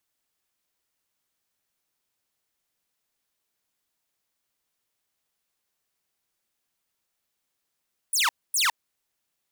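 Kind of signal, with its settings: burst of laser zaps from 11000 Hz, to 840 Hz, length 0.16 s saw, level -17 dB, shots 2, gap 0.25 s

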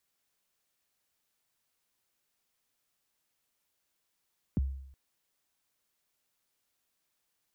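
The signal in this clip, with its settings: kick drum length 0.37 s, from 290 Hz, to 67 Hz, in 21 ms, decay 0.73 s, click off, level -23 dB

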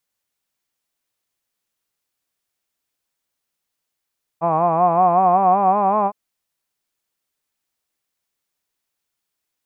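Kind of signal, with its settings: formant-synthesis vowel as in hod, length 1.71 s, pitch 161 Hz, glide +4.5 st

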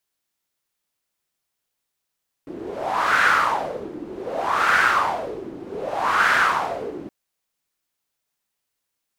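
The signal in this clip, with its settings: wind-like swept noise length 4.62 s, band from 320 Hz, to 1500 Hz, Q 4.6, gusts 3, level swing 17.5 dB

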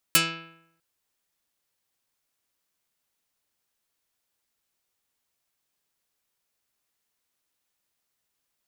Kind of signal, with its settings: plucked string E3, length 0.65 s, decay 0.78 s, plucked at 0.42, dark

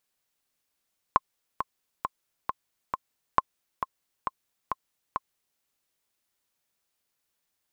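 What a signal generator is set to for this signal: metronome 135 bpm, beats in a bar 5, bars 2, 1060 Hz, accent 9 dB -5.5 dBFS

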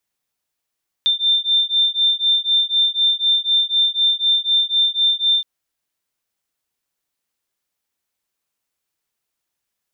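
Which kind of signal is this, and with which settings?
beating tones 3580 Hz, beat 4 Hz, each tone -17.5 dBFS 4.37 s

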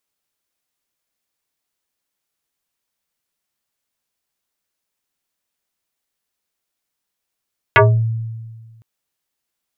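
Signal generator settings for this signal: FM tone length 1.06 s, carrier 113 Hz, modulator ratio 4.63, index 5.2, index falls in 0.30 s exponential, decay 1.62 s, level -5 dB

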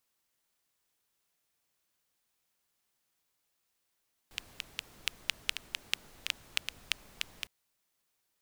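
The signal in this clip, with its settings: rain from filtered ticks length 3.16 s, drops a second 5.2, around 2800 Hz, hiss -15.5 dB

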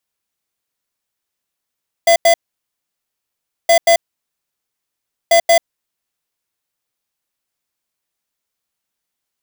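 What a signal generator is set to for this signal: beep pattern square 675 Hz, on 0.09 s, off 0.09 s, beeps 2, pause 1.35 s, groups 3, -9.5 dBFS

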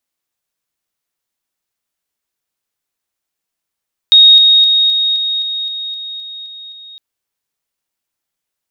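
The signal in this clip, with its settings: level ladder 3740 Hz -2 dBFS, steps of -3 dB, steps 11, 0.26 s 0.00 s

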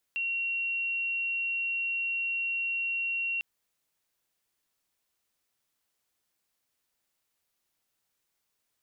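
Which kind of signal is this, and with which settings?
tone sine 2740 Hz -28 dBFS 3.25 s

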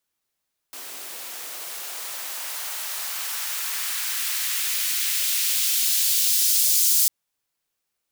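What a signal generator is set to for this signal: swept filtered noise white, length 6.35 s highpass, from 310 Hz, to 5900 Hz, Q 0.97, exponential, gain ramp +20 dB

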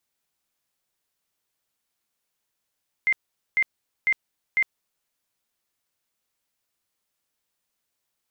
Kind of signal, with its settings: tone bursts 2090 Hz, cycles 117, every 0.50 s, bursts 4, -17 dBFS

